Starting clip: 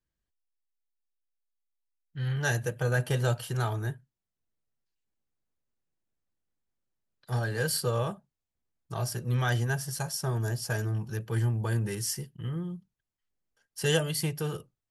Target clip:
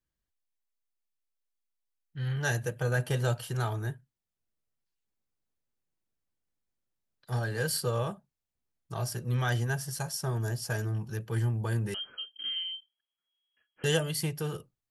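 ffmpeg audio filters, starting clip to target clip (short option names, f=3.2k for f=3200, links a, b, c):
-filter_complex "[0:a]asettb=1/sr,asplit=3[a][b][c];[a]atrim=end=11.944[d];[b]atrim=start=11.94:end=13.84,asetpts=PTS-STARTPTS,afade=t=in:d=0.004:c=qsin,afade=t=out:st=1.896:d=0.004:c=qsin,lowpass=f=2.8k:t=q:w=0.5098,lowpass=f=2.8k:t=q:w=0.6013,lowpass=f=2.8k:t=q:w=0.9,lowpass=f=2.8k:t=q:w=2.563,afreqshift=-3300[e];[c]atrim=start=13.836[f];[d][e]acrossfade=d=0.004:c1=hsin:c2=qsin[g];[g][f]acrossfade=d=0.004:c1=qsin:c2=hsin,volume=-1.5dB"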